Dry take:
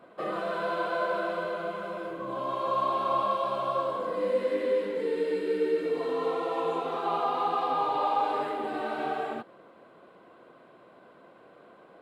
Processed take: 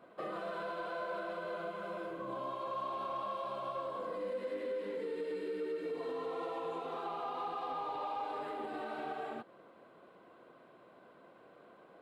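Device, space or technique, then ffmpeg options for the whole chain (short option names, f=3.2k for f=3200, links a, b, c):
soft clipper into limiter: -af "asoftclip=type=tanh:threshold=-18.5dB,alimiter=level_in=3dB:limit=-24dB:level=0:latency=1:release=208,volume=-3dB,volume=-5dB"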